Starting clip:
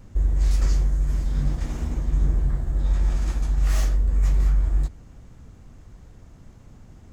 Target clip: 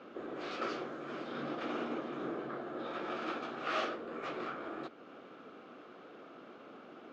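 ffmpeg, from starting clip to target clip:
-filter_complex "[0:a]asplit=2[a][b];[b]acompressor=threshold=-33dB:ratio=6,volume=-2dB[c];[a][c]amix=inputs=2:normalize=0,highpass=f=320:w=0.5412,highpass=f=320:w=1.3066,equalizer=f=930:t=q:w=4:g=-8,equalizer=f=1.3k:t=q:w=4:g=7,equalizer=f=1.9k:t=q:w=4:g=-9,lowpass=f=3.3k:w=0.5412,lowpass=f=3.3k:w=1.3066,volume=3dB"

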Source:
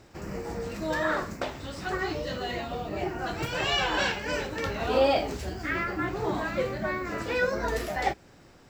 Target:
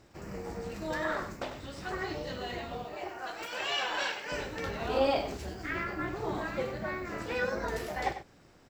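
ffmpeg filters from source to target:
-filter_complex "[0:a]asettb=1/sr,asplit=3[a][b][c];[a]atrim=end=2.844[d];[b]atrim=start=2.84:end=4.32,asetpts=PTS-STARTPTS,afade=t=in:d=0.004:c=qsin,afade=t=out:st=1.476:d=0.004:c=qsin,highpass=490[e];[c]atrim=start=4.316[f];[d][e]acrossfade=d=0.004:c1=hsin:c2=qsin[g];[g][f]acrossfade=d=0.004:c1=qsin:c2=hsin,tremolo=f=280:d=0.519,asplit=2[h][i];[i]aecho=0:1:97:0.282[j];[h][j]amix=inputs=2:normalize=0,volume=-3dB"

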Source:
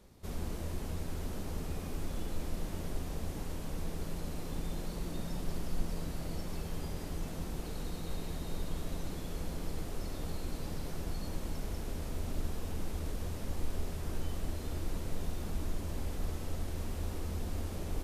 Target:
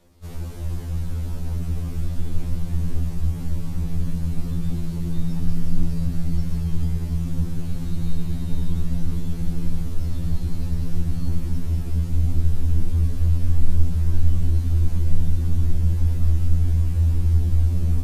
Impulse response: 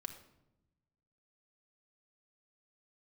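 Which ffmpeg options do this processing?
-af "asubboost=boost=5.5:cutoff=220,afftfilt=real='re*2*eq(mod(b,4),0)':imag='im*2*eq(mod(b,4),0)':win_size=2048:overlap=0.75,volume=4.5dB"

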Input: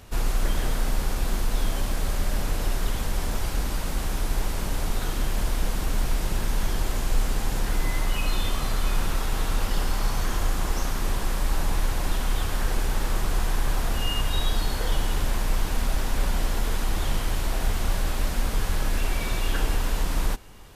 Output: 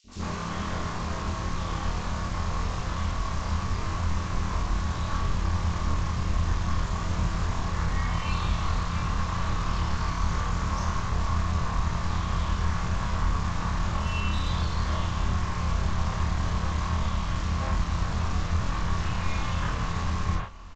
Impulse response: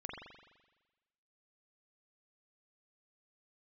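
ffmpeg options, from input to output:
-filter_complex "[0:a]highpass=60,aeval=exprs='val(0)*sin(2*PI*140*n/s)':c=same,equalizer=f=1.1k:t=o:w=0.26:g=10.5,aresample=16000,aeval=exprs='0.158*sin(PI/2*2.24*val(0)/0.158)':c=same,aresample=44100,asubboost=boost=6:cutoff=99,asoftclip=type=tanh:threshold=-11dB,acrossover=split=430|3300[a][b][c];[a]adelay=40[d];[b]adelay=80[e];[d][e][c]amix=inputs=3:normalize=0[f];[1:a]atrim=start_sample=2205,afade=t=out:st=0.15:d=0.01,atrim=end_sample=7056,asetrate=74970,aresample=44100[g];[f][g]afir=irnorm=-1:irlink=0"

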